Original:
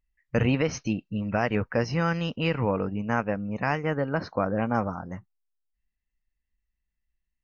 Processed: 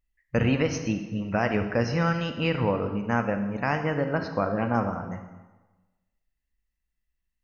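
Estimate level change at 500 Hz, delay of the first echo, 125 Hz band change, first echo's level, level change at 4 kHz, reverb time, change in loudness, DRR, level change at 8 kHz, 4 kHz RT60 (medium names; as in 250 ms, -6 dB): +0.5 dB, no echo, +0.5 dB, no echo, +0.5 dB, 1.2 s, +0.5 dB, 7.0 dB, no reading, 1.0 s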